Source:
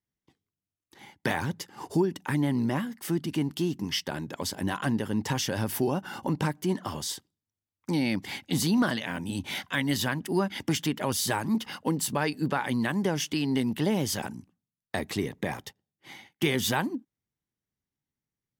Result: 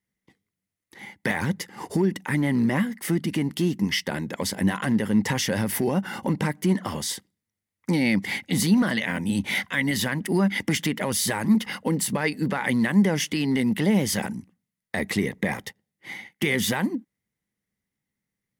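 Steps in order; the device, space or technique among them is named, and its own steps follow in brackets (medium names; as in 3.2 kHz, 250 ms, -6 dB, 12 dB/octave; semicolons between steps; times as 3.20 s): limiter into clipper (peak limiter -19.5 dBFS, peak gain reduction 5.5 dB; hard clipper -20.5 dBFS, distortion -33 dB); graphic EQ with 31 bands 200 Hz +9 dB, 500 Hz +5 dB, 2 kHz +11 dB, 10 kHz +5 dB; trim +3 dB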